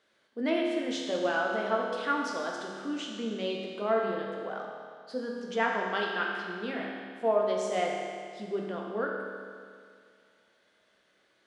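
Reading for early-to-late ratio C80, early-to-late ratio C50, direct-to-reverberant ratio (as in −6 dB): 2.5 dB, 1.0 dB, −1.5 dB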